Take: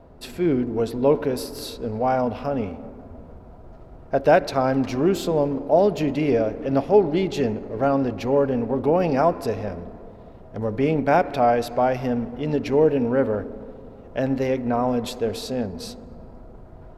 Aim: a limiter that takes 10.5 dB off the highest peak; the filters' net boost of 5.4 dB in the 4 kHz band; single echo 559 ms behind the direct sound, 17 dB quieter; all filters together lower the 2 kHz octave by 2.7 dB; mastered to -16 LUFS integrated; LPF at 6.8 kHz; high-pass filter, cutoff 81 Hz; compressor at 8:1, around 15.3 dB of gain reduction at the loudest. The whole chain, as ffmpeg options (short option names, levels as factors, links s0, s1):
-af "highpass=81,lowpass=6800,equalizer=f=2000:t=o:g=-6,equalizer=f=4000:t=o:g=8.5,acompressor=threshold=0.0398:ratio=8,alimiter=level_in=1.26:limit=0.0631:level=0:latency=1,volume=0.794,aecho=1:1:559:0.141,volume=9.44"